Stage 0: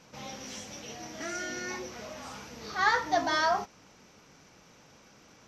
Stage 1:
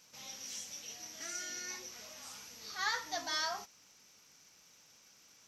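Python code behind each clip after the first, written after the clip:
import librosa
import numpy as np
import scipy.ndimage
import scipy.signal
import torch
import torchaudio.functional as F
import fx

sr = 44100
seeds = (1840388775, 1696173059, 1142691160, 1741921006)

y = librosa.effects.preemphasis(x, coef=0.9, zi=[0.0])
y = y * 10.0 ** (3.0 / 20.0)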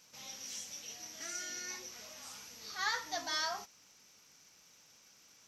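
y = x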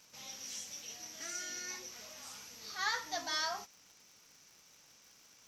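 y = fx.dmg_crackle(x, sr, seeds[0], per_s=110.0, level_db=-50.0)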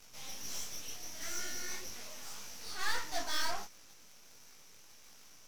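y = fx.tube_stage(x, sr, drive_db=33.0, bias=0.75)
y = np.maximum(y, 0.0)
y = fx.detune_double(y, sr, cents=54)
y = y * 10.0 ** (15.5 / 20.0)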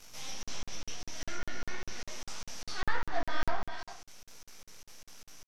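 y = fx.rev_gated(x, sr, seeds[1], gate_ms=430, shape='flat', drr_db=7.0)
y = fx.env_lowpass_down(y, sr, base_hz=2000.0, full_db=-28.5)
y = fx.buffer_crackle(y, sr, first_s=0.43, period_s=0.2, block=2048, kind='zero')
y = y * 10.0 ** (4.0 / 20.0)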